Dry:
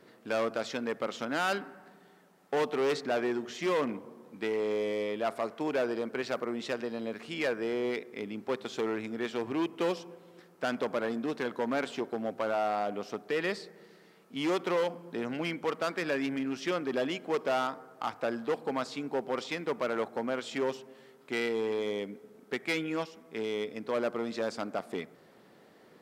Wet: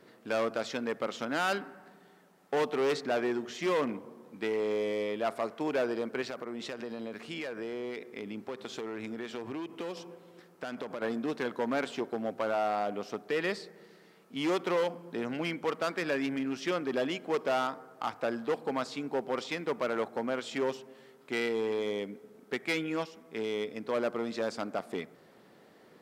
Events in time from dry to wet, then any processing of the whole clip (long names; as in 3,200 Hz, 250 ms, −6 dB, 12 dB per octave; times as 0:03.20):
0:06.22–0:11.02: downward compressor 5 to 1, threshold −34 dBFS